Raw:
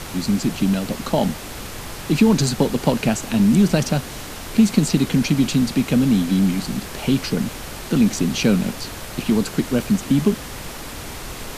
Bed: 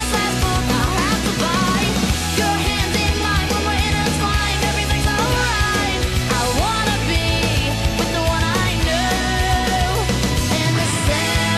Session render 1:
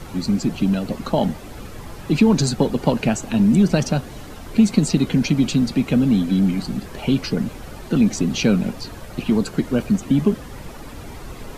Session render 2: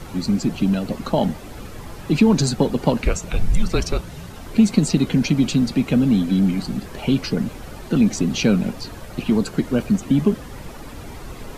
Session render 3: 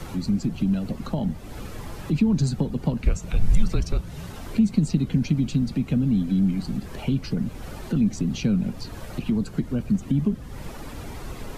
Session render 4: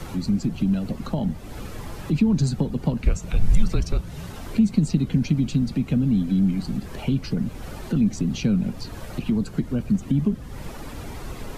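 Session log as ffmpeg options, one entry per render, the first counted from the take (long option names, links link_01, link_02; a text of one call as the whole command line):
ffmpeg -i in.wav -af "afftdn=noise_reduction=11:noise_floor=-33" out.wav
ffmpeg -i in.wav -filter_complex "[0:a]asplit=3[link_01][link_02][link_03];[link_01]afade=type=out:start_time=3.02:duration=0.02[link_04];[link_02]afreqshift=-190,afade=type=in:start_time=3.02:duration=0.02,afade=type=out:start_time=4.32:duration=0.02[link_05];[link_03]afade=type=in:start_time=4.32:duration=0.02[link_06];[link_04][link_05][link_06]amix=inputs=3:normalize=0" out.wav
ffmpeg -i in.wav -filter_complex "[0:a]acrossover=split=210[link_01][link_02];[link_02]acompressor=threshold=-38dB:ratio=2.5[link_03];[link_01][link_03]amix=inputs=2:normalize=0" out.wav
ffmpeg -i in.wav -af "volume=1dB" out.wav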